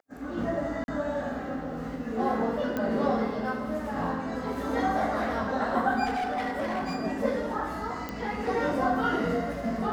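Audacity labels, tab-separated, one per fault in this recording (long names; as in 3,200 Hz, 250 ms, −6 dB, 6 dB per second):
0.840000	0.880000	drop-out 41 ms
2.770000	2.770000	click −18 dBFS
6.050000	6.960000	clipping −26 dBFS
8.090000	8.090000	click −20 dBFS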